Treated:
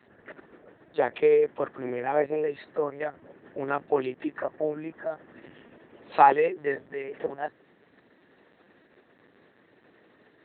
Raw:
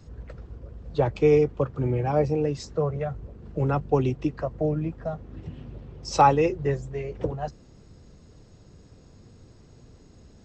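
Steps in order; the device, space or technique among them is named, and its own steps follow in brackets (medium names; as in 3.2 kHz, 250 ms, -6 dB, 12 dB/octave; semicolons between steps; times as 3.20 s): talking toy (LPC vocoder at 8 kHz pitch kept; high-pass 370 Hz 12 dB/octave; peaking EQ 1.8 kHz +12 dB 0.41 oct)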